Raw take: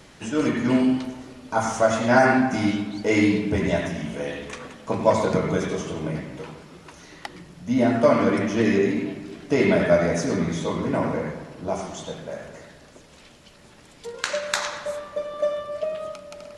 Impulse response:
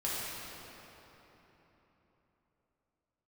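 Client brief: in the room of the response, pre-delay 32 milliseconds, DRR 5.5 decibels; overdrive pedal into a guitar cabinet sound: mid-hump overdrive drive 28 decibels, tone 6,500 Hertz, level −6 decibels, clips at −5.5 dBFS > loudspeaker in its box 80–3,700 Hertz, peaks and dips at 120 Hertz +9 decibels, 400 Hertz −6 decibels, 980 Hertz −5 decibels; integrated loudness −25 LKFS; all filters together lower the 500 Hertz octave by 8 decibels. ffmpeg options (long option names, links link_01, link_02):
-filter_complex "[0:a]equalizer=frequency=500:width_type=o:gain=-8.5,asplit=2[link_01][link_02];[1:a]atrim=start_sample=2205,adelay=32[link_03];[link_02][link_03]afir=irnorm=-1:irlink=0,volume=-12dB[link_04];[link_01][link_04]amix=inputs=2:normalize=0,asplit=2[link_05][link_06];[link_06]highpass=frequency=720:poles=1,volume=28dB,asoftclip=type=tanh:threshold=-5.5dB[link_07];[link_05][link_07]amix=inputs=2:normalize=0,lowpass=frequency=6500:poles=1,volume=-6dB,highpass=80,equalizer=frequency=120:width_type=q:width=4:gain=9,equalizer=frequency=400:width_type=q:width=4:gain=-6,equalizer=frequency=980:width_type=q:width=4:gain=-5,lowpass=frequency=3700:width=0.5412,lowpass=frequency=3700:width=1.3066,volume=-9dB"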